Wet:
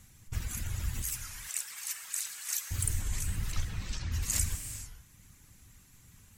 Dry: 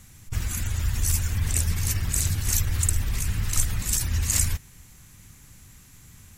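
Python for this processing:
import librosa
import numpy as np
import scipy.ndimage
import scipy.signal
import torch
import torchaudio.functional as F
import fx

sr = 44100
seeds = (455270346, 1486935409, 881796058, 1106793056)

y = fx.lowpass(x, sr, hz=4900.0, slope=24, at=(3.52, 4.12))
y = fx.dereverb_blind(y, sr, rt60_s=0.65)
y = fx.cheby1_highpass(y, sr, hz=1300.0, order=2, at=(1.02, 2.71))
y = fx.rev_gated(y, sr, seeds[0], gate_ms=480, shape='flat', drr_db=6.5)
y = fx.record_warp(y, sr, rpm=33.33, depth_cents=160.0)
y = F.gain(torch.from_numpy(y), -7.0).numpy()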